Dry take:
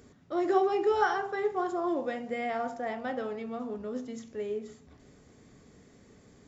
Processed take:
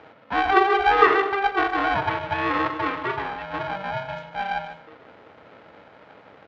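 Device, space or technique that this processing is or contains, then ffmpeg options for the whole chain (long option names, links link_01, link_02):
ring modulator pedal into a guitar cabinet: -filter_complex "[0:a]asettb=1/sr,asplit=3[link_01][link_02][link_03];[link_01]atrim=end=2.894[link_04];[link_02]atrim=start=2.89:end=3.54,asetpts=PTS-STARTPTS,afade=type=in:duration=0.004:curve=qsin,afade=type=out:start_time=0.646:duration=0.004:curve=qsin,lowshelf=frequency=450:gain=-6.5[link_05];[link_03]atrim=start=3.536[link_06];[link_04][link_05]acrossfade=duration=0.004:curve1=hsin:curve2=qsin[link_07];[link_07][link_06]acrossfade=duration=0.004:curve1=qsin:curve2=hsin,aeval=exprs='val(0)*sgn(sin(2*PI*390*n/s))':channel_layout=same,highpass=110,equalizer=frequency=150:width_type=q:width=4:gain=-7,equalizer=frequency=220:width_type=q:width=4:gain=-3,equalizer=frequency=420:width_type=q:width=4:gain=8,equalizer=frequency=880:width_type=q:width=4:gain=3,equalizer=frequency=1300:width_type=q:width=4:gain=6,equalizer=frequency=1900:width_type=q:width=4:gain=4,lowpass=frequency=3500:width=0.5412,lowpass=frequency=3500:width=1.3066,asplit=2[link_08][link_09];[link_09]adelay=151.6,volume=-12dB,highshelf=frequency=4000:gain=-3.41[link_10];[link_08][link_10]amix=inputs=2:normalize=0,volume=6.5dB"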